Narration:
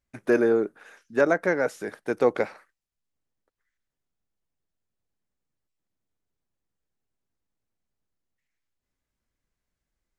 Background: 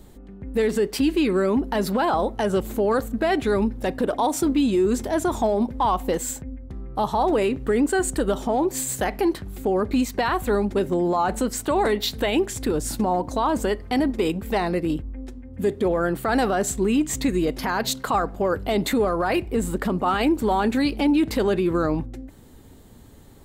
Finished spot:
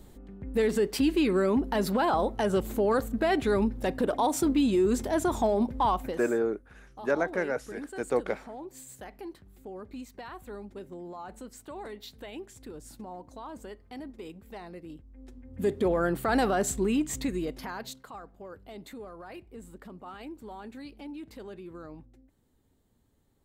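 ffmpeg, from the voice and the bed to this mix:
ffmpeg -i stem1.wav -i stem2.wav -filter_complex "[0:a]adelay=5900,volume=-6dB[link_01];[1:a]volume=12dB,afade=type=out:start_time=5.88:duration=0.35:silence=0.158489,afade=type=in:start_time=15.09:duration=0.63:silence=0.158489,afade=type=out:start_time=16.61:duration=1.48:silence=0.125893[link_02];[link_01][link_02]amix=inputs=2:normalize=0" out.wav

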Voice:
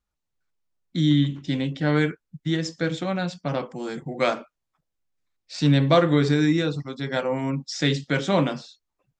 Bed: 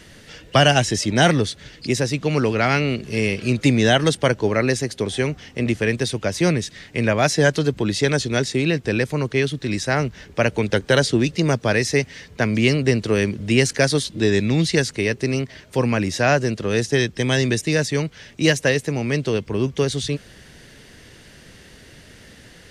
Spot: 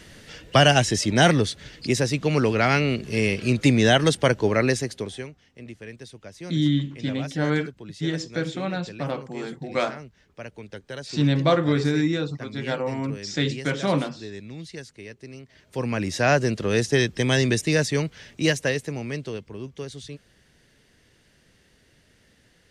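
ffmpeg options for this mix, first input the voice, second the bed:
ffmpeg -i stem1.wav -i stem2.wav -filter_complex "[0:a]adelay=5550,volume=-2dB[link_01];[1:a]volume=16.5dB,afade=type=out:start_time=4.67:duration=0.64:silence=0.125893,afade=type=in:start_time=15.43:duration=0.95:silence=0.125893,afade=type=out:start_time=17.83:duration=1.74:silence=0.223872[link_02];[link_01][link_02]amix=inputs=2:normalize=0" out.wav

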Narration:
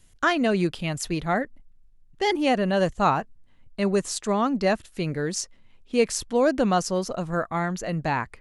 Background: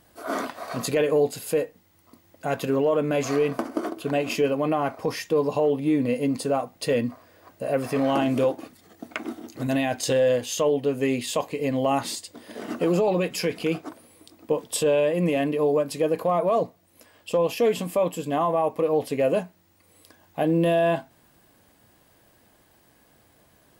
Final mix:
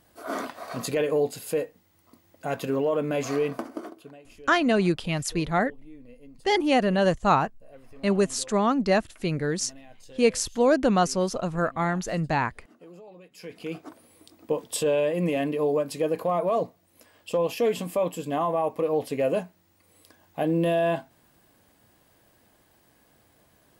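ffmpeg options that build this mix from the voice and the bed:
ffmpeg -i stem1.wav -i stem2.wav -filter_complex "[0:a]adelay=4250,volume=0.5dB[link_01];[1:a]volume=20dB,afade=type=out:start_time=3.43:duration=0.73:silence=0.0749894,afade=type=in:start_time=13.31:duration=0.86:silence=0.0707946[link_02];[link_01][link_02]amix=inputs=2:normalize=0" out.wav

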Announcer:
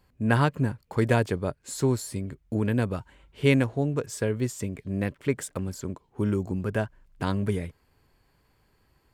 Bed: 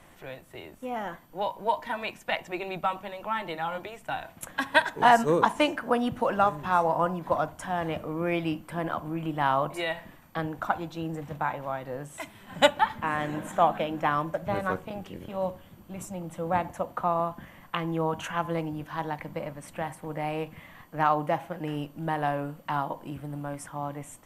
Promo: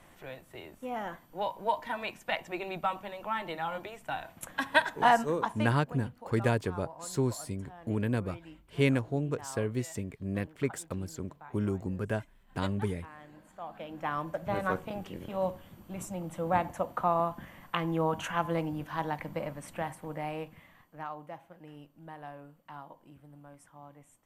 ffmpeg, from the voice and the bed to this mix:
ffmpeg -i stem1.wav -i stem2.wav -filter_complex "[0:a]adelay=5350,volume=-5dB[link_01];[1:a]volume=17dB,afade=type=out:start_time=4.98:duration=0.81:silence=0.125893,afade=type=in:start_time=13.64:duration=1.12:silence=0.1,afade=type=out:start_time=19.62:duration=1.46:silence=0.158489[link_02];[link_01][link_02]amix=inputs=2:normalize=0" out.wav

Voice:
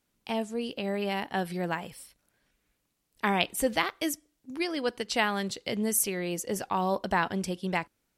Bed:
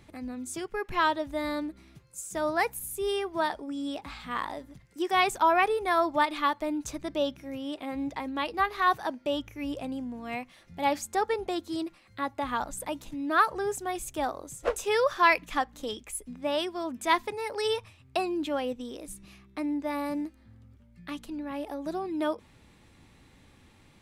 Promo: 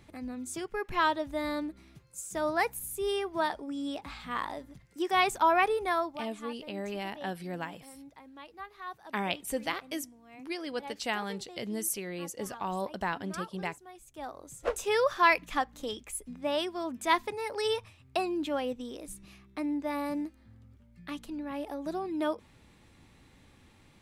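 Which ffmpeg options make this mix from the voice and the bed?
ffmpeg -i stem1.wav -i stem2.wav -filter_complex "[0:a]adelay=5900,volume=-6dB[link_01];[1:a]volume=14.5dB,afade=type=out:start_time=5.84:duration=0.37:silence=0.158489,afade=type=in:start_time=14.07:duration=0.73:silence=0.158489[link_02];[link_01][link_02]amix=inputs=2:normalize=0" out.wav

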